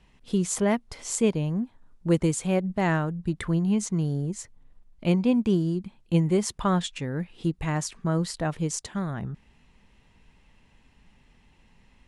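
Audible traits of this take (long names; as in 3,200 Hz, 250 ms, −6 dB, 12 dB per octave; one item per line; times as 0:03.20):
background noise floor −61 dBFS
spectral slope −5.5 dB per octave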